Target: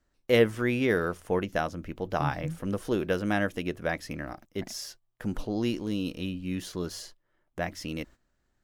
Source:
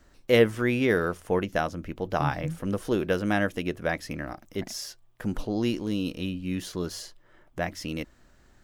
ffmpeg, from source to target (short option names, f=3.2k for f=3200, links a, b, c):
-af "agate=range=-14dB:threshold=-46dB:ratio=16:detection=peak,volume=-2dB"